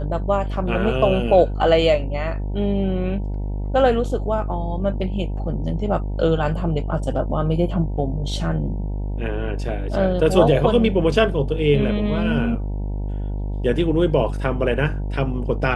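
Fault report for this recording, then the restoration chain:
buzz 50 Hz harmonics 19 -25 dBFS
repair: de-hum 50 Hz, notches 19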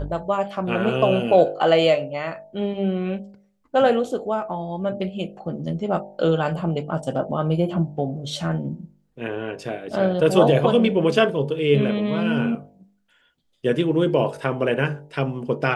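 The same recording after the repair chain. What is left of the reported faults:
nothing left

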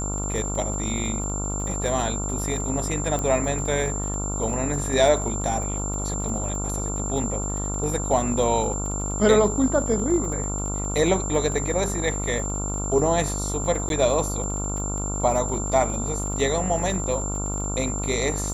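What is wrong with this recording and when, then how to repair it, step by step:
buzz 50 Hz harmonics 28 -29 dBFS
crackle 38 per s -32 dBFS
whine 7.3 kHz -30 dBFS
3.19 s: pop -15 dBFS
13.89–13.90 s: dropout 12 ms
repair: de-click; band-stop 7.3 kHz, Q 30; de-hum 50 Hz, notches 28; interpolate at 13.89 s, 12 ms

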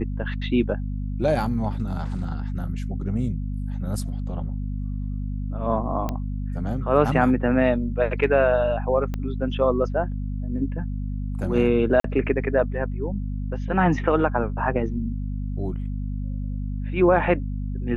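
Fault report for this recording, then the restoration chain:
hum 50 Hz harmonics 5 -28 dBFS
6.09 s: pop -14 dBFS
9.14 s: pop -17 dBFS
12.00–12.04 s: dropout 43 ms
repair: de-click; de-hum 50 Hz, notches 5; interpolate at 12.00 s, 43 ms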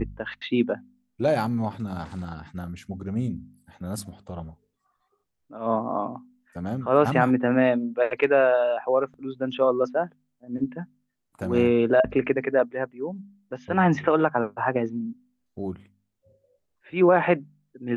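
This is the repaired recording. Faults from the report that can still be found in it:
9.14 s: pop

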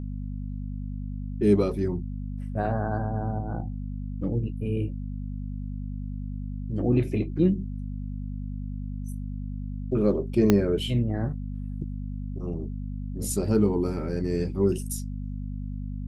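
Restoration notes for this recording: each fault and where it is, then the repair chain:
hum 50 Hz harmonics 5 -33 dBFS
10.50 s: pop -6 dBFS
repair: de-click; de-hum 50 Hz, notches 5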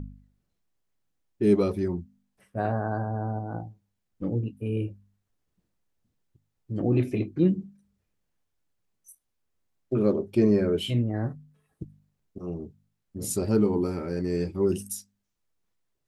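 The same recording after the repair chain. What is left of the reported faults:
10.50 s: pop

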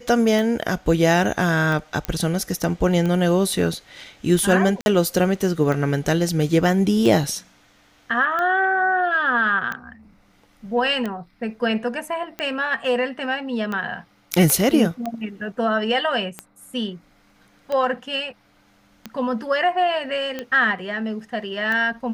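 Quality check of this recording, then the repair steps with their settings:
tick 45 rpm
2.05 s: pop -10 dBFS
4.81–4.86 s: dropout 51 ms
14.50 s: pop -5 dBFS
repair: de-click; interpolate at 4.81 s, 51 ms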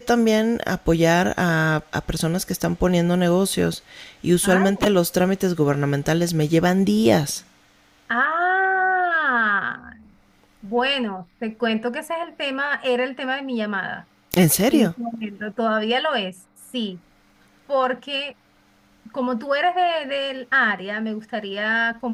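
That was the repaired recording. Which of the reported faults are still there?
nothing left

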